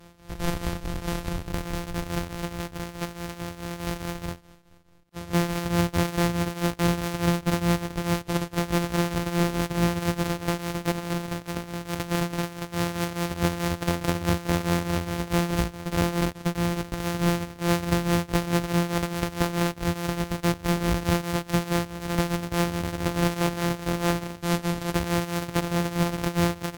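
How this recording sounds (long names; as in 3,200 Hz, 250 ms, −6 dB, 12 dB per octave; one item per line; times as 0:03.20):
a buzz of ramps at a fixed pitch in blocks of 256 samples
tremolo triangle 4.7 Hz, depth 80%
Ogg Vorbis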